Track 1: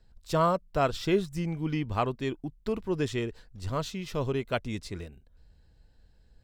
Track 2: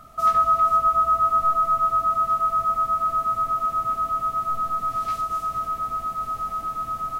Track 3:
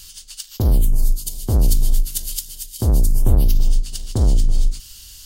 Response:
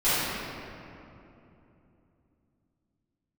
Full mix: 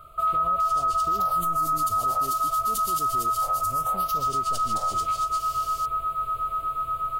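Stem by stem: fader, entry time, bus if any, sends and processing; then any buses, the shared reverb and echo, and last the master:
-5.0 dB, 0.00 s, no send, low-pass 1 kHz; peak limiter -25 dBFS, peak gain reduction 10 dB
+0.5 dB, 0.00 s, no send, static phaser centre 1.2 kHz, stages 8
-2.5 dB, 0.60 s, no send, steep high-pass 540 Hz 72 dB/octave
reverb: none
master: peak limiter -18 dBFS, peak gain reduction 10 dB

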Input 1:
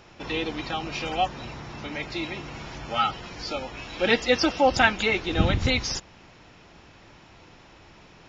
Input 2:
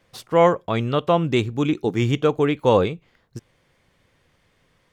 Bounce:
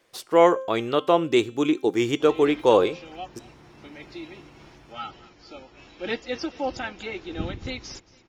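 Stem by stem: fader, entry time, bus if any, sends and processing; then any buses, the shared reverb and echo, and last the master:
-8.0 dB, 2.00 s, no send, echo send -21 dB, vibrato 1.4 Hz 13 cents; random flutter of the level, depth 65%
-1.0 dB, 0.00 s, no send, no echo send, tone controls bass -14 dB, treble +4 dB; de-hum 263.5 Hz, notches 35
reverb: none
echo: feedback delay 225 ms, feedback 44%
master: peaking EQ 340 Hz +7 dB 0.68 oct

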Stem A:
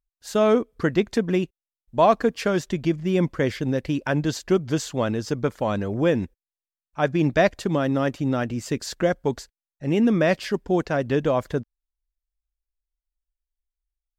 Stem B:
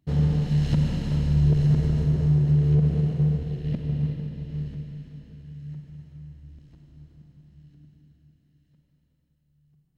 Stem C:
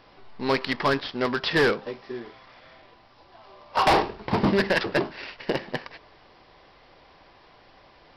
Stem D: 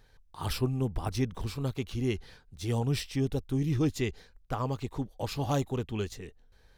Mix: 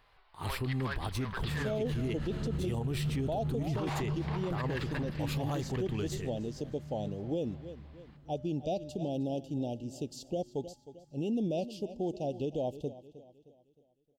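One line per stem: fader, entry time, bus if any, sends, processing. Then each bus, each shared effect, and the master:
-1.5 dB, 1.30 s, no bus, no send, echo send -18 dB, Chebyshev band-stop 820–2800 Hz, order 4; upward expansion 1.5:1, over -31 dBFS
-1.5 dB, 1.35 s, bus A, no send, no echo send, peaking EQ 1.3 kHz +11.5 dB 0.39 oct; compression 2:1, threshold -27 dBFS, peak gain reduction 6.5 dB
-5.5 dB, 0.00 s, bus A, no send, echo send -17 dB, high-pass 840 Hz 12 dB/octave
-4.5 dB, 0.00 s, bus A, no send, no echo send, level rider gain up to 10.5 dB
bus A: 0.0 dB, peaking EQ 5.4 kHz -9.5 dB 0.44 oct; peak limiter -17 dBFS, peak gain reduction 7 dB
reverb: none
echo: feedback delay 310 ms, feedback 42%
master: feedback comb 120 Hz, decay 1.4 s, harmonics odd, mix 40%; peak limiter -25.5 dBFS, peak gain reduction 11 dB

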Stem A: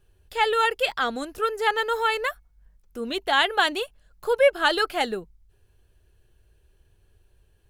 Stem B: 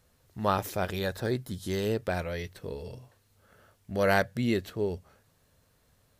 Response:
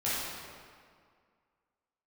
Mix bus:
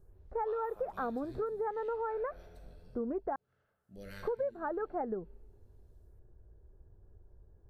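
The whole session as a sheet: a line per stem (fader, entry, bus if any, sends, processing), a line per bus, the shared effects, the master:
+2.5 dB, 0.00 s, muted 3.36–3.96 s, no send, Gaussian low-pass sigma 8.3 samples
-12.5 dB, 0.00 s, send -16 dB, lamp-driven phase shifter 0.66 Hz; auto duck -10 dB, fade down 0.90 s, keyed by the first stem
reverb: on, RT60 2.0 s, pre-delay 11 ms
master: compression 10:1, threshold -32 dBFS, peak gain reduction 19 dB

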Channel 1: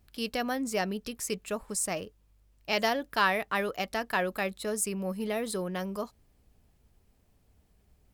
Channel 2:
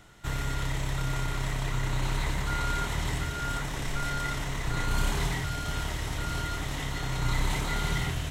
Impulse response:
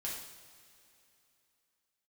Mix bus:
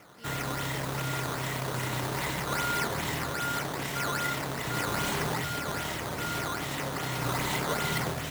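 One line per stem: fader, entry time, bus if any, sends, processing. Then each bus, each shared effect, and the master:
-19.5 dB, 0.00 s, no send, none
+2.5 dB, 0.00 s, no send, decimation with a swept rate 10×, swing 160% 2.5 Hz; modulation noise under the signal 21 dB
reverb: none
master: high-pass 160 Hz 12 dB/octave; peaking EQ 540 Hz +2 dB 0.32 oct

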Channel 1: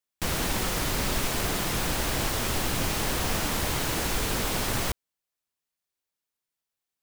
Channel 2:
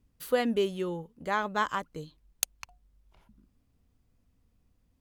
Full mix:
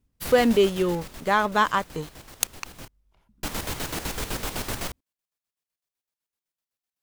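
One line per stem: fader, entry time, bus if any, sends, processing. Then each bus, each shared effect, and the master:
-1.0 dB, 0.00 s, muted 2.88–3.43 s, no send, square tremolo 7.9 Hz, depth 60%, duty 50%; auto duck -15 dB, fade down 1.40 s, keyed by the second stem
+1.0 dB, 0.00 s, no send, waveshaping leveller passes 2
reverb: none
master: none

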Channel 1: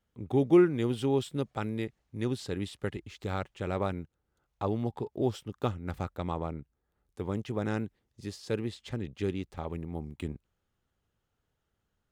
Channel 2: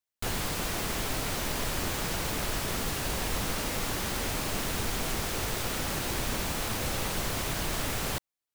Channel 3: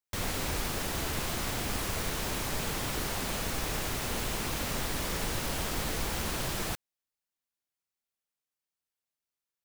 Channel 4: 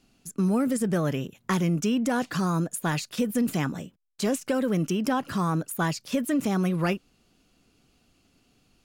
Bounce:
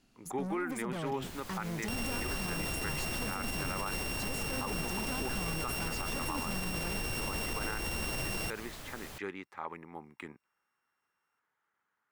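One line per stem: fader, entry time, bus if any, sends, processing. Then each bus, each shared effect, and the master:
-7.0 dB, 0.00 s, no send, high-pass 260 Hz 12 dB/octave; high-order bell 1.4 kHz +13.5 dB
-15.0 dB, 1.00 s, no send, none
0.0 dB, 1.75 s, no send, sorted samples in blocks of 16 samples
-5.0 dB, 0.00 s, no send, saturation -31 dBFS, distortion -8 dB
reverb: none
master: peak limiter -25.5 dBFS, peak gain reduction 10 dB

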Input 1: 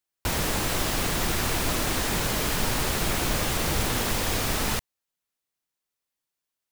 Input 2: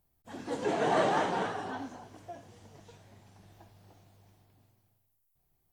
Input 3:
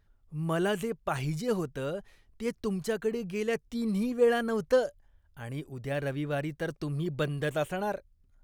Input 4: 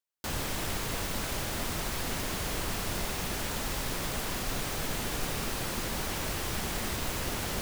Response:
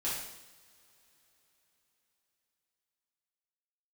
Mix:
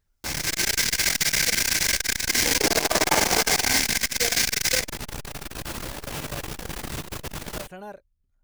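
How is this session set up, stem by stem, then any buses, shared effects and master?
+1.0 dB, 0.00 s, send -7 dB, rippled Chebyshev high-pass 1.5 kHz, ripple 9 dB; level rider gain up to 11.5 dB
-1.0 dB, 1.95 s, send -6 dB, waveshaping leveller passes 2
-7.5 dB, 0.00 s, no send, none
-0.5 dB, 0.00 s, send -5.5 dB, none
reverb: on, pre-delay 3 ms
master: transformer saturation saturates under 880 Hz

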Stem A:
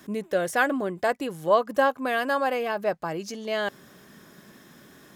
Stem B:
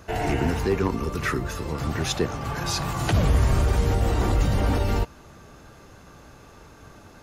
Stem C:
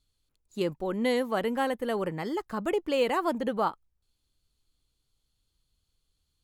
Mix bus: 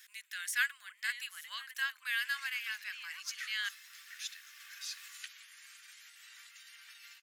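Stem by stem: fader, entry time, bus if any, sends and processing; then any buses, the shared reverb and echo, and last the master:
-1.0 dB, 0.00 s, no send, none
-11.5 dB, 2.15 s, no send, compression 3:1, threshold -23 dBFS, peak gain reduction 6.5 dB
+1.5 dB, 0.00 s, no send, treble shelf 3.5 kHz -9 dB; auto duck -10 dB, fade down 1.65 s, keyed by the first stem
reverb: none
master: steep high-pass 1.7 kHz 36 dB/octave

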